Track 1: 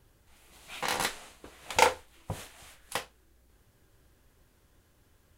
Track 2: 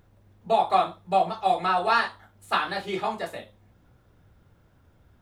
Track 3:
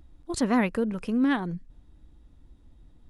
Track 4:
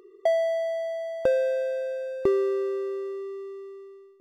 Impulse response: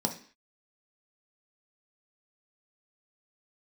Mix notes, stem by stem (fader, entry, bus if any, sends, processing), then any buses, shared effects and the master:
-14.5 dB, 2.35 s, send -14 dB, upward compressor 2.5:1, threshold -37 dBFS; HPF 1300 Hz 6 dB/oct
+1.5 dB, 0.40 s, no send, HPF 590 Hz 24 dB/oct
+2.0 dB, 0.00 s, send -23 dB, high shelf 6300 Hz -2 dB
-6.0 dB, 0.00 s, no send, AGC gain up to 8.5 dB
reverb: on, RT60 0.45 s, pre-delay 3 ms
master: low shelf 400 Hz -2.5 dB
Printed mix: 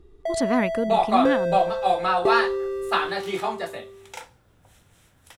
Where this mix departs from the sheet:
stem 2: missing HPF 590 Hz 24 dB/oct; stem 3: send off

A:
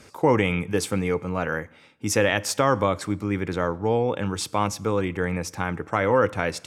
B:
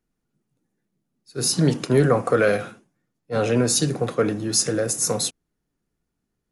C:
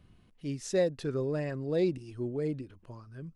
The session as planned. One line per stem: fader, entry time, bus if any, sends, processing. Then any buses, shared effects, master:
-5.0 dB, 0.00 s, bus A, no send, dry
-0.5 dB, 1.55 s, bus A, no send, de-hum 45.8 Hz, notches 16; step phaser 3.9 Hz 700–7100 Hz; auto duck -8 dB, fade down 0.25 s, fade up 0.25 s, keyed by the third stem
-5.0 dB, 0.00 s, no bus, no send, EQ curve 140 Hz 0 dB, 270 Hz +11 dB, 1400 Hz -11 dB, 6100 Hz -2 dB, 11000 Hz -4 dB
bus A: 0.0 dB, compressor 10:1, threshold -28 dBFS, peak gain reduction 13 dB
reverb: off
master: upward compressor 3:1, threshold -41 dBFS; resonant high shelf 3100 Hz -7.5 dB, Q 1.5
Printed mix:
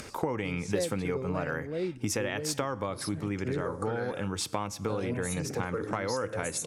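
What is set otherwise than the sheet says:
stem A -5.0 dB -> +3.5 dB; stem C: missing EQ curve 140 Hz 0 dB, 270 Hz +11 dB, 1400 Hz -11 dB, 6100 Hz -2 dB, 11000 Hz -4 dB; master: missing resonant high shelf 3100 Hz -7.5 dB, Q 1.5

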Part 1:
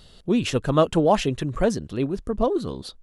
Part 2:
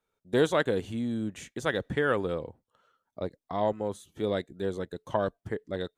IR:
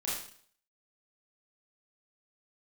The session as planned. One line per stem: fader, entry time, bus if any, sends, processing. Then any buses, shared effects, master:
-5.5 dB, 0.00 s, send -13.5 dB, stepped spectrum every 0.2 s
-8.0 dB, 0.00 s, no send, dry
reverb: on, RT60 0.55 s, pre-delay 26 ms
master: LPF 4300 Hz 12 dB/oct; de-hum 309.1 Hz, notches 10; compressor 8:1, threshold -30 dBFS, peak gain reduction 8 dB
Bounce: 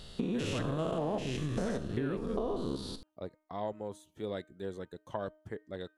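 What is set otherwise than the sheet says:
stem 1 -5.5 dB -> +1.0 dB; master: missing LPF 4300 Hz 12 dB/oct

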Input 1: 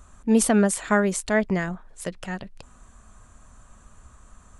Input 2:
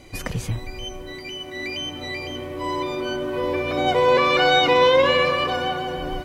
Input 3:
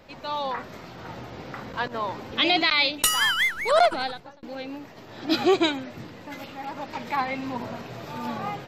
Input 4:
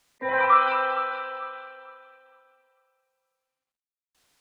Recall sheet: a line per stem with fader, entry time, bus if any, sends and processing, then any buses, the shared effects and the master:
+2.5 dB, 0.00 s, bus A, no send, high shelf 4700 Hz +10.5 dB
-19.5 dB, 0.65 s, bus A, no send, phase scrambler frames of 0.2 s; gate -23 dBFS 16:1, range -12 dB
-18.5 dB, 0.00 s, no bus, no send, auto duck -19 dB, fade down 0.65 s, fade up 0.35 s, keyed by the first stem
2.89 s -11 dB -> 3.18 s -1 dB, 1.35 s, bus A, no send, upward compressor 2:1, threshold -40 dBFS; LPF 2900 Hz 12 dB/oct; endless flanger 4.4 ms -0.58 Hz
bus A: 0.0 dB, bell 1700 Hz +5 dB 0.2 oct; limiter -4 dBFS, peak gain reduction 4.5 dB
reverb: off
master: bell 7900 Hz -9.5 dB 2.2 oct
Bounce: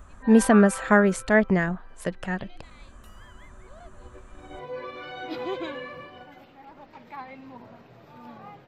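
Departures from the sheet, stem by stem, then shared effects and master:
stem 1: missing high shelf 4700 Hz +10.5 dB; stem 3 -18.5 dB -> -12.5 dB; stem 4: entry 1.35 s -> 0.00 s

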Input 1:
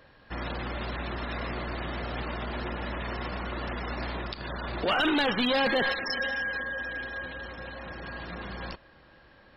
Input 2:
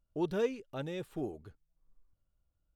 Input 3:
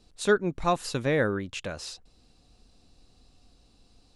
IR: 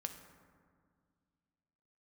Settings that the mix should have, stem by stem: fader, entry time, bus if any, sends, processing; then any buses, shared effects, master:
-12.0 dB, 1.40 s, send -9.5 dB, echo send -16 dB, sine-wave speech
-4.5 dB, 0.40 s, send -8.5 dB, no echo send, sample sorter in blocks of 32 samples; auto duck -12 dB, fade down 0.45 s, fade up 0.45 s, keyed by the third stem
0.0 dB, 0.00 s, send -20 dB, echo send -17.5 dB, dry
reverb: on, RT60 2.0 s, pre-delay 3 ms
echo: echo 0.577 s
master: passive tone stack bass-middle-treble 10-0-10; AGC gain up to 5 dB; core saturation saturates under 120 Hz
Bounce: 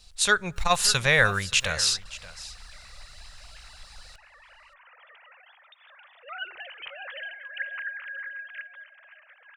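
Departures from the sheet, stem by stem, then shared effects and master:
stem 2: send -8.5 dB -> -15.5 dB; stem 3 0.0 dB -> +12.0 dB

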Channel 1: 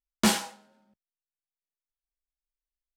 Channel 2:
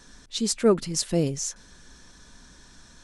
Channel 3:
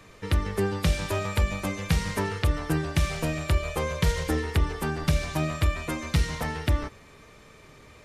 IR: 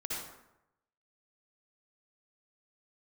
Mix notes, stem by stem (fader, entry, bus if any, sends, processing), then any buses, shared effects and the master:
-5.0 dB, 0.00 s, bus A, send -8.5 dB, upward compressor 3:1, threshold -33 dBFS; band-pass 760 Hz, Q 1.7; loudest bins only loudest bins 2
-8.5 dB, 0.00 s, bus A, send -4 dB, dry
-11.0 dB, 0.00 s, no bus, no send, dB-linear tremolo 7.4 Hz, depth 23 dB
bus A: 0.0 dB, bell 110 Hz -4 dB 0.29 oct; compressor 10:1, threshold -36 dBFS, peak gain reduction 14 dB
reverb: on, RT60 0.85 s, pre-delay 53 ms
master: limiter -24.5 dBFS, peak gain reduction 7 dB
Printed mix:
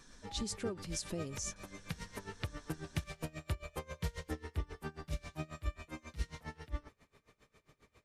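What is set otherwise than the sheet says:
stem 1 -5.0 dB -> -16.5 dB; stem 2: send off; master: missing limiter -24.5 dBFS, peak gain reduction 7 dB

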